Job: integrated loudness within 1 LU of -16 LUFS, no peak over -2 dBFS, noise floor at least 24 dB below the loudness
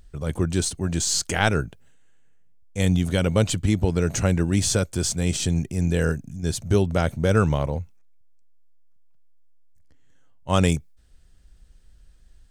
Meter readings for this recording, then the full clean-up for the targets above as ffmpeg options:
loudness -23.0 LUFS; peak -5.0 dBFS; loudness target -16.0 LUFS
-> -af "volume=7dB,alimiter=limit=-2dB:level=0:latency=1"

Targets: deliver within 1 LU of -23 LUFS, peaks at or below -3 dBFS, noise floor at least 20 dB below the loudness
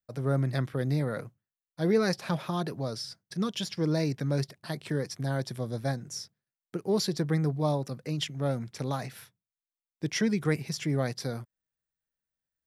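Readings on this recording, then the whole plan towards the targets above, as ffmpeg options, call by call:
loudness -31.0 LUFS; peak -14.0 dBFS; loudness target -23.0 LUFS
-> -af "volume=8dB"

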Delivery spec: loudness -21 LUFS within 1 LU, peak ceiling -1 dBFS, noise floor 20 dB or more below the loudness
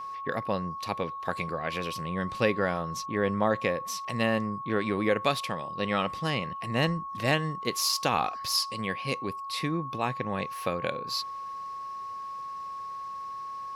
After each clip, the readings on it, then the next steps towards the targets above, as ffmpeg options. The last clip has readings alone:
steady tone 1100 Hz; tone level -35 dBFS; loudness -30.0 LUFS; peak -12.0 dBFS; loudness target -21.0 LUFS
-> -af "bandreject=f=1.1k:w=30"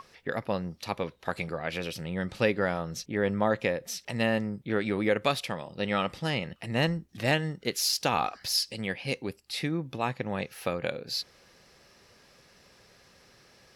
steady tone none; loudness -30.5 LUFS; peak -12.0 dBFS; loudness target -21.0 LUFS
-> -af "volume=9.5dB"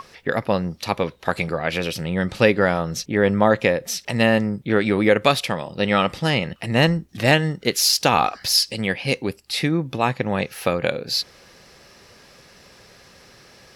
loudness -21.0 LUFS; peak -2.5 dBFS; noise floor -50 dBFS

